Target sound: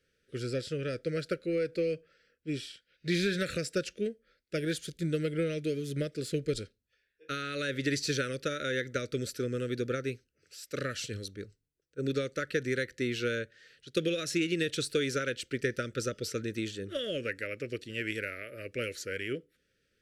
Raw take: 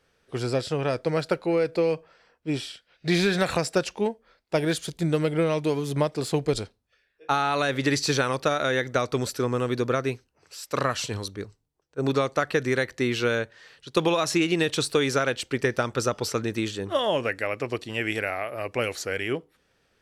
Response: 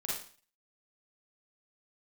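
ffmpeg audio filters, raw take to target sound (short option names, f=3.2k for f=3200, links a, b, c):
-af "aeval=exprs='0.316*(cos(1*acos(clip(val(0)/0.316,-1,1)))-cos(1*PI/2))+0.0178*(cos(3*acos(clip(val(0)/0.316,-1,1)))-cos(3*PI/2))':c=same,asuperstop=centerf=880:order=8:qfactor=1.1,volume=-5.5dB"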